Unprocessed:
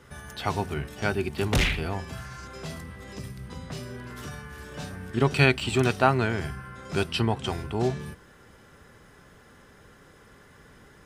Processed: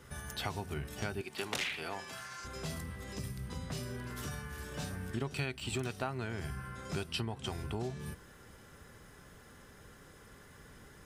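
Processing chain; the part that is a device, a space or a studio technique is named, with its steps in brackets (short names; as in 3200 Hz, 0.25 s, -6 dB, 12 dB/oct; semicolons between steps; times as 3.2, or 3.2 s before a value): 1.21–2.45 weighting filter A; ASMR close-microphone chain (low shelf 130 Hz +4 dB; compressor 6:1, threshold -30 dBFS, peak gain reduction 15.5 dB; high shelf 6100 Hz +8 dB); gain -4 dB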